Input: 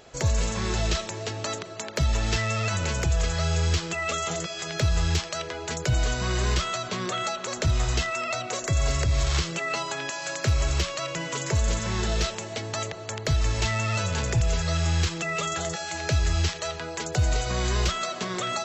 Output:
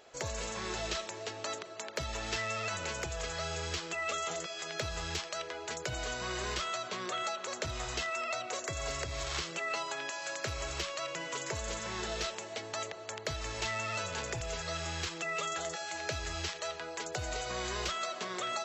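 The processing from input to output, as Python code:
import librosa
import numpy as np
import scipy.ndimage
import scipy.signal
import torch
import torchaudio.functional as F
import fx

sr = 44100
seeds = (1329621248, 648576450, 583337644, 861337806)

y = fx.bass_treble(x, sr, bass_db=-13, treble_db=-2)
y = F.gain(torch.from_numpy(y), -6.0).numpy()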